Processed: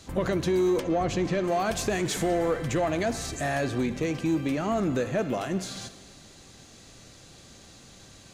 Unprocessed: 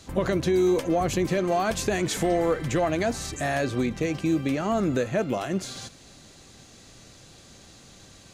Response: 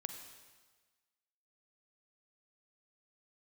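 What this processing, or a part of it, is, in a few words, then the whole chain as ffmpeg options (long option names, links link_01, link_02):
saturated reverb return: -filter_complex "[0:a]asplit=2[link_01][link_02];[1:a]atrim=start_sample=2205[link_03];[link_02][link_03]afir=irnorm=-1:irlink=0,asoftclip=type=tanh:threshold=-25dB,volume=0.5dB[link_04];[link_01][link_04]amix=inputs=2:normalize=0,asettb=1/sr,asplit=3[link_05][link_06][link_07];[link_05]atrim=end=0.804[link_08];[link_06]atrim=start=0.8:end=1.44,asetpts=PTS-STARTPTS,afade=type=in:duration=0.004:curve=qsin,afade=type=out:start_time=0.636:duration=0.004:curve=qsin,lowpass=5800[link_09];[link_07]atrim=start=1.436[link_10];[link_08][link_09]acrossfade=duration=0.004:curve1=hsin:curve2=qsin[link_11];[link_11][link_10]acrossfade=duration=0.004:curve1=qsin:curve2=hsin,volume=-5.5dB"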